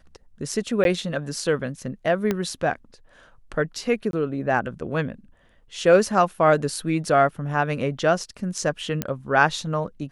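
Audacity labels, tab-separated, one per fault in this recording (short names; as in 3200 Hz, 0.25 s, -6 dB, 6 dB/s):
0.840000	0.850000	gap 12 ms
2.310000	2.310000	pop -10 dBFS
4.110000	4.130000	gap 22 ms
9.020000	9.020000	pop -9 dBFS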